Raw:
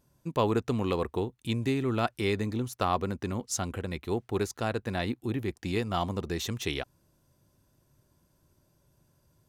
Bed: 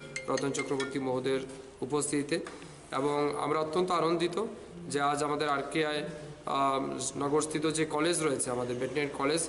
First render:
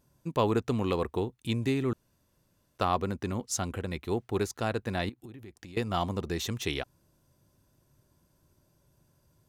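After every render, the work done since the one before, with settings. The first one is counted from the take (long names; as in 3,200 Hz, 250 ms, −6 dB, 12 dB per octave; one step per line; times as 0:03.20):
0:01.93–0:02.78: fill with room tone
0:05.09–0:05.77: downward compressor 20 to 1, threshold −42 dBFS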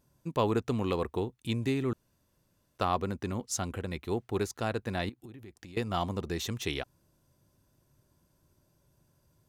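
level −1.5 dB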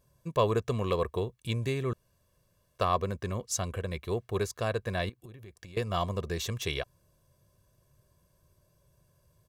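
comb filter 1.8 ms, depth 63%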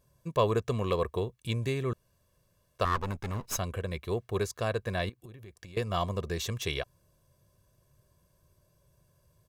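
0:02.85–0:03.58: lower of the sound and its delayed copy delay 0.76 ms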